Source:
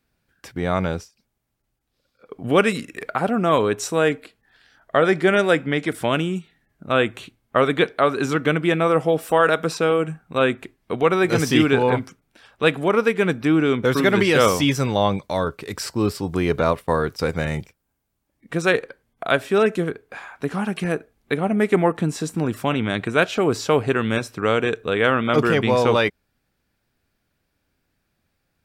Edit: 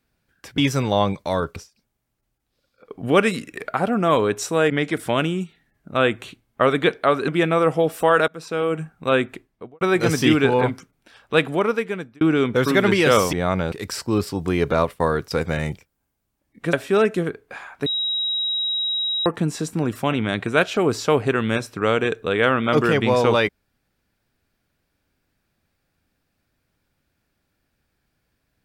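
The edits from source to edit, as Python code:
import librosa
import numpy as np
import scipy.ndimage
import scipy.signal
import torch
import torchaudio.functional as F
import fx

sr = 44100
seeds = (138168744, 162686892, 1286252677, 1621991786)

y = fx.studio_fade_out(x, sr, start_s=10.62, length_s=0.48)
y = fx.edit(y, sr, fx.swap(start_s=0.58, length_s=0.39, other_s=14.62, other_length_s=0.98),
    fx.cut(start_s=4.11, length_s=1.54),
    fx.cut(start_s=8.23, length_s=0.34),
    fx.fade_in_from(start_s=9.57, length_s=0.54, floor_db=-22.5),
    fx.fade_out_span(start_s=12.8, length_s=0.7),
    fx.cut(start_s=18.61, length_s=0.73),
    fx.bleep(start_s=20.47, length_s=1.4, hz=3830.0, db=-20.5), tone=tone)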